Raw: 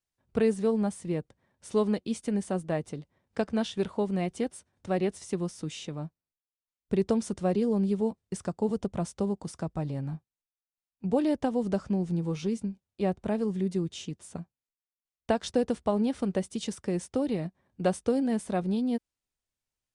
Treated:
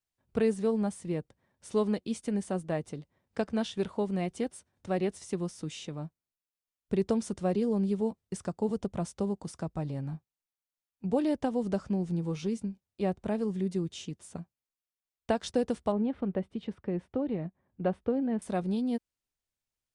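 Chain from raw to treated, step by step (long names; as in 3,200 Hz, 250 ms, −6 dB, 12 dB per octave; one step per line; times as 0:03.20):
0:15.92–0:18.42: high-frequency loss of the air 470 metres
level −2 dB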